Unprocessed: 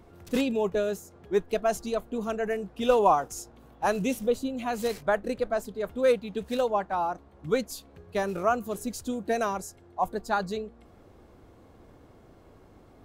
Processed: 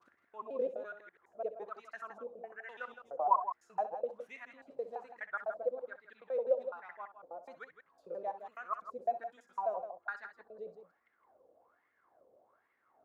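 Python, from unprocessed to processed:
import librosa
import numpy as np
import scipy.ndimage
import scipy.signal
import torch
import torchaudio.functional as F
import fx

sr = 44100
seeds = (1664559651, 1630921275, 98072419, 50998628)

y = fx.block_reorder(x, sr, ms=84.0, group=4)
y = fx.wah_lfo(y, sr, hz=1.2, low_hz=510.0, high_hz=2000.0, q=11.0)
y = fx.echo_multitap(y, sr, ms=(64, 164), db=(-12.5, -10.5))
y = y * 10.0 ** (1.0 / 20.0)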